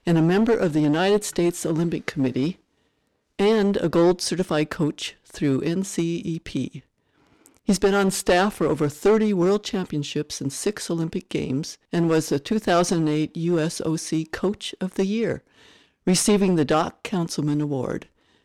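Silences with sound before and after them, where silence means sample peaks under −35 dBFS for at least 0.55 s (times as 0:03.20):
0:02.52–0:03.39
0:06.79–0:07.46
0:15.38–0:16.07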